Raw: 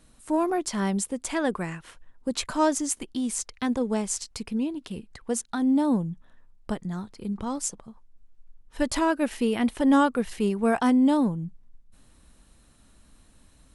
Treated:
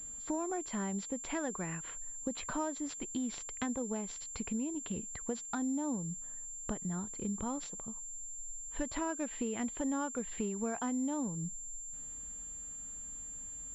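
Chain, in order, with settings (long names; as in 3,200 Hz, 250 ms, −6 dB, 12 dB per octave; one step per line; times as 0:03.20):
downward compressor 6 to 1, threshold −33 dBFS, peak gain reduction 16 dB
switching amplifier with a slow clock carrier 7,300 Hz
level −1 dB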